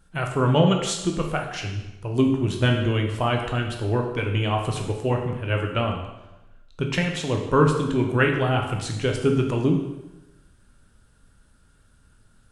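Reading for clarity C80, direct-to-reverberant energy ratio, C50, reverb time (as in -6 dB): 7.5 dB, 2.0 dB, 5.5 dB, 1.0 s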